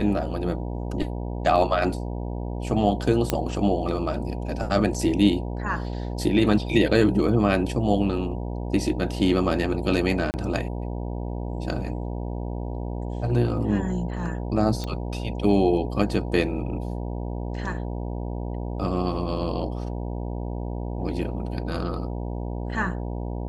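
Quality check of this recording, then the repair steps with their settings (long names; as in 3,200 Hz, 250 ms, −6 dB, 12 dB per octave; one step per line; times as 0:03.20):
mains buzz 60 Hz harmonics 16 −30 dBFS
0:03.30: click −6 dBFS
0:10.31–0:10.34: drop-out 29 ms
0:14.84: click −17 dBFS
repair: click removal
hum removal 60 Hz, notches 16
repair the gap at 0:10.31, 29 ms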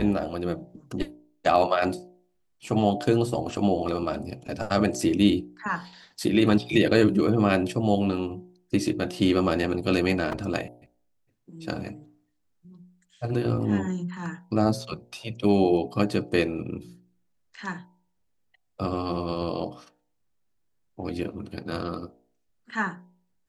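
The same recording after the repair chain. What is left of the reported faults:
none of them is left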